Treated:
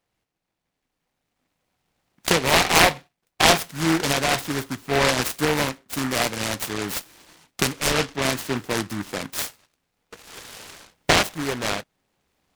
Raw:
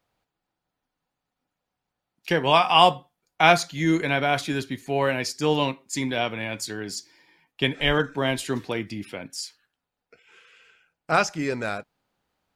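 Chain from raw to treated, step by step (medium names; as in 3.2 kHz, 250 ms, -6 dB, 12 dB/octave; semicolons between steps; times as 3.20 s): recorder AGC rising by 6.3 dB/s; dynamic bell 1.4 kHz, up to +4 dB, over -30 dBFS, Q 0.85; delay time shaken by noise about 1.3 kHz, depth 0.21 ms; trim -2 dB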